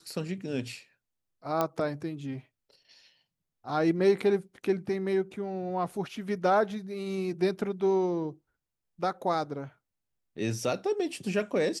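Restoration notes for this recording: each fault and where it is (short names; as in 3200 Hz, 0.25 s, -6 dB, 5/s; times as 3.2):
1.61 pop -13 dBFS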